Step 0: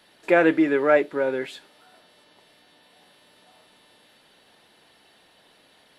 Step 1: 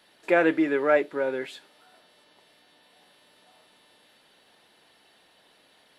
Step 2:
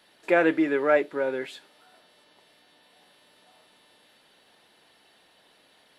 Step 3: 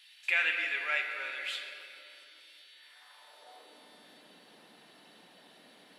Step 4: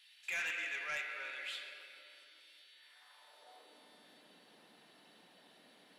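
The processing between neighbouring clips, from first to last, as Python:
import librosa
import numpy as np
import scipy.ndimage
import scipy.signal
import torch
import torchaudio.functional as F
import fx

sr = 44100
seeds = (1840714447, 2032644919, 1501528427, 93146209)

y1 = fx.low_shelf(x, sr, hz=200.0, db=-4.5)
y1 = y1 * 10.0 ** (-2.5 / 20.0)
y2 = y1
y3 = fx.filter_sweep_highpass(y2, sr, from_hz=2600.0, to_hz=190.0, start_s=2.67, end_s=3.96, q=2.1)
y3 = fx.room_shoebox(y3, sr, seeds[0], volume_m3=170.0, walls='hard', distance_m=0.33)
y4 = 10.0 ** (-27.5 / 20.0) * np.tanh(y3 / 10.0 ** (-27.5 / 20.0))
y4 = y4 * 10.0 ** (-5.5 / 20.0)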